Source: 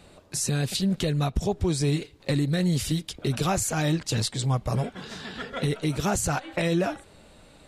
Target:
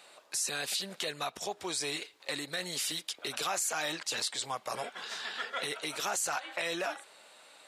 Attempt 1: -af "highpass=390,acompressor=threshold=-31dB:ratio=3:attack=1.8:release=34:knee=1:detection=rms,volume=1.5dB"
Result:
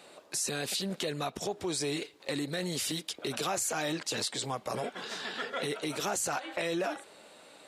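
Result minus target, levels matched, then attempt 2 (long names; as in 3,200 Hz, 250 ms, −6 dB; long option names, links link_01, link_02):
500 Hz band +4.0 dB
-af "highpass=810,acompressor=threshold=-31dB:ratio=3:attack=1.8:release=34:knee=1:detection=rms,volume=1.5dB"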